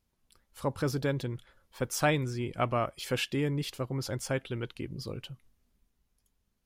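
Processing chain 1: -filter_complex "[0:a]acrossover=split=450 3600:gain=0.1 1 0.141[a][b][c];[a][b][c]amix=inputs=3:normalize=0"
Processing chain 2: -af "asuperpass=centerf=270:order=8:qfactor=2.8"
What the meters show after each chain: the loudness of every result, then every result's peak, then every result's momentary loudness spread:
-37.0, -41.0 LUFS; -15.5, -27.0 dBFS; 17, 11 LU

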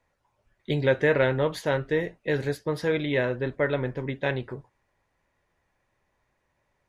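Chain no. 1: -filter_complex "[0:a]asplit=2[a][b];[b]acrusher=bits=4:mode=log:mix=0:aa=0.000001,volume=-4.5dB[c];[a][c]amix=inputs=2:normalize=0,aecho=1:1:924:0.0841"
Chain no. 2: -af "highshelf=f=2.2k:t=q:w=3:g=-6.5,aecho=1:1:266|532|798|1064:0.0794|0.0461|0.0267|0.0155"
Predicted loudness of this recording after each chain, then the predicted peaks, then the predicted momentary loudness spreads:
-22.5, -25.5 LUFS; -6.5, -8.0 dBFS; 9, 10 LU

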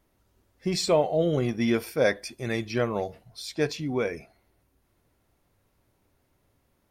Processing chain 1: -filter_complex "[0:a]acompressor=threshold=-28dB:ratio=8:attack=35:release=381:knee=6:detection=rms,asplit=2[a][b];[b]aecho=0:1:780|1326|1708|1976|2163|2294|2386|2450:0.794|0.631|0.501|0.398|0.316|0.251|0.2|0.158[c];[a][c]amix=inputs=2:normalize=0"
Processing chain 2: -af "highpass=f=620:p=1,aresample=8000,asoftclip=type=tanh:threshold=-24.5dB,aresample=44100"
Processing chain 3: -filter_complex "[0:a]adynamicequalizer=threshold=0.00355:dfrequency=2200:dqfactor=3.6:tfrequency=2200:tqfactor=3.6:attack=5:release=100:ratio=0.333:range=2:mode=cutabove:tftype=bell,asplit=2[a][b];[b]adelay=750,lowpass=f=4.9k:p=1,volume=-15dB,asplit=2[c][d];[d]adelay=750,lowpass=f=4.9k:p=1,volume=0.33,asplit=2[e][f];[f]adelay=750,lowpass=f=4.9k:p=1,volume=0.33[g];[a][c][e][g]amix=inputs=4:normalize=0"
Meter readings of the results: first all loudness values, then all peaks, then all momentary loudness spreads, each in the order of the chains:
-31.5, -34.5, -27.5 LUFS; -16.5, -21.5, -11.5 dBFS; 9, 11, 20 LU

